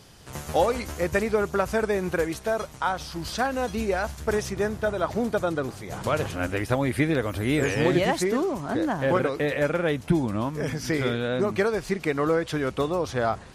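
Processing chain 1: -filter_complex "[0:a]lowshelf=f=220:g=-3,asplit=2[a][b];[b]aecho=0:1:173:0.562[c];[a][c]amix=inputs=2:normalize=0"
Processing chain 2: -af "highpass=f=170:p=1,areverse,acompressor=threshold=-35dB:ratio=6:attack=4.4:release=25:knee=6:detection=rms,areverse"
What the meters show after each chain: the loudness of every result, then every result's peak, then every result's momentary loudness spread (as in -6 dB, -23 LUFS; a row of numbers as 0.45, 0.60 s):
-25.5, -37.0 LUFS; -6.5, -24.5 dBFS; 5, 2 LU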